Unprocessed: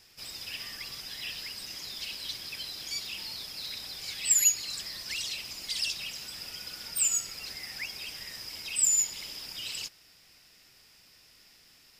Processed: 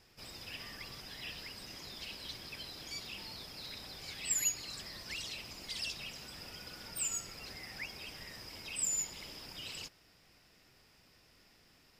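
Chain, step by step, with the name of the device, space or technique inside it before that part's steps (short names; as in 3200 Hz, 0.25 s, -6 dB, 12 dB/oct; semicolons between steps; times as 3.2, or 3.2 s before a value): through cloth (high shelf 1900 Hz -12.5 dB); gain +2 dB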